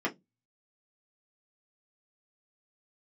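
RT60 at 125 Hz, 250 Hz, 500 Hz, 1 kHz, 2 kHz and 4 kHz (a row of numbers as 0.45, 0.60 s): 0.40, 0.30, 0.20, 0.10, 0.10, 0.15 s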